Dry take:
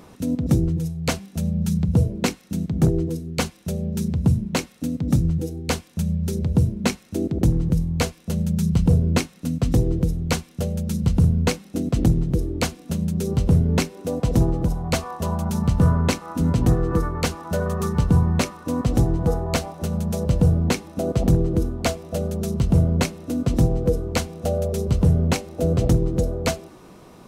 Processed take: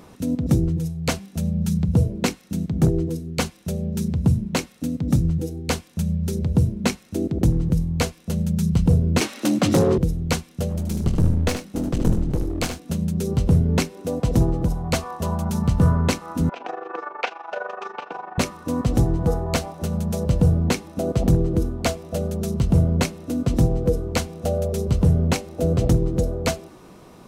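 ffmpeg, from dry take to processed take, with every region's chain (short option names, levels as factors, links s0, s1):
-filter_complex "[0:a]asettb=1/sr,asplit=3[s0][s1][s2];[s0]atrim=end=9.214[s3];[s1]atrim=start=9.21:end=9.98,asetpts=PTS-STARTPTS,afade=t=in:d=0.004:c=qsin,afade=t=out:st=0.766:d=0.004:c=qsin,asplit=2[s4][s5];[s5]highpass=f=720:p=1,volume=15.8,asoftclip=type=tanh:threshold=0.376[s6];[s4][s6]amix=inputs=2:normalize=0,lowpass=f=5000:p=1,volume=0.501,afreqshift=49[s7];[s2]atrim=start=9.976[s8];[s3][s7]acrossfade=d=0.004:c1=hsin:c2=qsin[s9];[s9][s8]acrossfade=d=0.004:c1=qsin:c2=hsin,asettb=1/sr,asplit=3[s10][s11][s12];[s10]atrim=end=10.694[s13];[s11]atrim=start=10.69:end=12.79,asetpts=PTS-STARTPTS,afade=t=in:d=0.004:c=qsin,afade=t=out:st=2.096:d=0.004:c=qsin,aeval=exprs='clip(val(0),-1,0.0501)':c=same,asplit=2[s14][s15];[s15]adelay=24,volume=0.224[s16];[s14][s16]amix=inputs=2:normalize=0,atrim=end_sample=92610,aecho=1:1:76:0.398,atrim=end_sample=92610[s17];[s12]atrim=start=12.786[s18];[s13][s17]acrossfade=d=0.004:c1=hsin:c2=qsin[s19];[s19][s18]acrossfade=d=0.004:c1=qsin:c2=hsin,asettb=1/sr,asplit=3[s20][s21][s22];[s20]atrim=end=16.494[s23];[s21]atrim=start=16.49:end=18.38,asetpts=PTS-STARTPTS,afade=t=in:d=0.004:c=qsin,afade=t=out:st=1.886:d=0.004:c=qsin,tremolo=f=24:d=0.75,highpass=f=440:w=0.5412,highpass=f=440:w=1.3066,equalizer=f=480:t=q:w=4:g=-3,equalizer=f=770:t=q:w=4:g=9,equalizer=f=1500:t=q:w=4:g=6,equalizer=f=2500:t=q:w=4:g=9,equalizer=f=4300:t=q:w=4:g=-6,lowpass=f=4500:w=0.5412,lowpass=f=4500:w=1.3066[s24];[s22]atrim=start=18.376[s25];[s23][s24]acrossfade=d=0.004:c1=hsin:c2=qsin[s26];[s26][s25]acrossfade=d=0.004:c1=qsin:c2=hsin"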